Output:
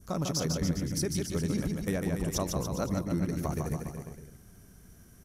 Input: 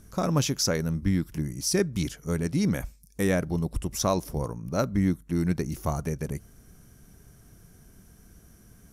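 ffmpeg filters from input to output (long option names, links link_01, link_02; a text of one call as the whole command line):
ffmpeg -i in.wav -filter_complex "[0:a]adynamicequalizer=threshold=0.00501:dfrequency=2100:dqfactor=1.1:tfrequency=2100:tqfactor=1.1:attack=5:release=100:ratio=0.375:range=2.5:mode=cutabove:tftype=bell,acompressor=threshold=-25dB:ratio=6,atempo=1.7,asplit=2[link_01][link_02];[link_02]aecho=0:1:150|285|406.5|515.8|614.3:0.631|0.398|0.251|0.158|0.1[link_03];[link_01][link_03]amix=inputs=2:normalize=0,volume=-2dB" out.wav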